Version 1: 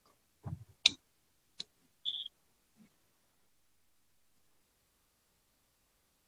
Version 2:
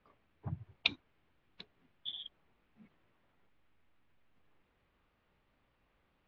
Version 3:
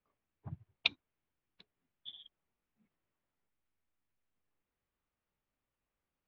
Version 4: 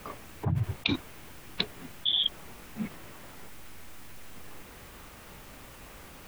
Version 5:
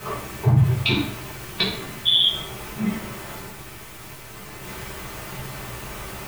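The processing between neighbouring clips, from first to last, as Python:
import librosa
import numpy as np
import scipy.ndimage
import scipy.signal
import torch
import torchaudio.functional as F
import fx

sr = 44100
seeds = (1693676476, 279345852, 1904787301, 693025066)

y1 = scipy.signal.sosfilt(scipy.signal.butter(4, 2900.0, 'lowpass', fs=sr, output='sos'), x)
y1 = y1 * 10.0 ** (2.5 / 20.0)
y2 = fx.upward_expand(y1, sr, threshold_db=-58.0, expansion=1.5)
y3 = fx.env_flatten(y2, sr, amount_pct=100)
y3 = y3 * 10.0 ** (1.5 / 20.0)
y4 = fx.law_mismatch(y3, sr, coded='mu')
y4 = fx.rev_fdn(y4, sr, rt60_s=0.62, lf_ratio=1.0, hf_ratio=0.85, size_ms=46.0, drr_db=-8.5)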